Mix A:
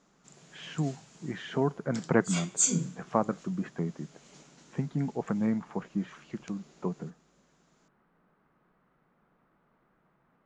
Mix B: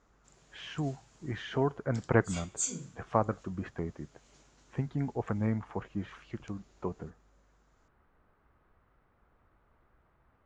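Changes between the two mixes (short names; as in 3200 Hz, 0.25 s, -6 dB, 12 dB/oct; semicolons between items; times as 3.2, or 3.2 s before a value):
background -7.5 dB; master: add resonant low shelf 120 Hz +11.5 dB, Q 3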